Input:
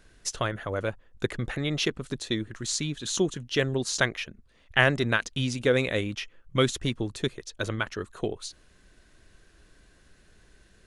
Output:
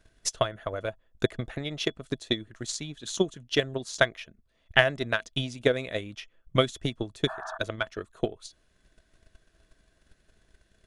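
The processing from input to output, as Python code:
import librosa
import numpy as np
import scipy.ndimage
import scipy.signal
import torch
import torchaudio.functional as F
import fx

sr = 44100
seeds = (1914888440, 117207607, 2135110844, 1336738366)

y = fx.spec_paint(x, sr, seeds[0], shape='noise', start_s=7.27, length_s=0.31, low_hz=620.0, high_hz=1800.0, level_db=-31.0)
y = fx.transient(y, sr, attack_db=12, sustain_db=0)
y = fx.small_body(y, sr, hz=(650.0, 3400.0), ring_ms=85, db=11)
y = y * librosa.db_to_amplitude(-9.0)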